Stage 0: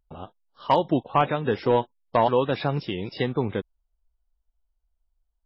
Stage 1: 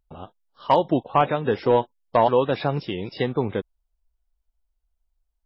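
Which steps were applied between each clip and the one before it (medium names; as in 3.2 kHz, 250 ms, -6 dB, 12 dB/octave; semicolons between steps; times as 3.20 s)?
dynamic bell 600 Hz, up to +3 dB, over -33 dBFS, Q 0.86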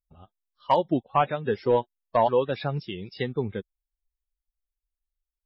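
expander on every frequency bin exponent 1.5; trim -1.5 dB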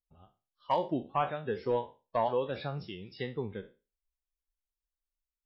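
spectral sustain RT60 0.30 s; trim -8.5 dB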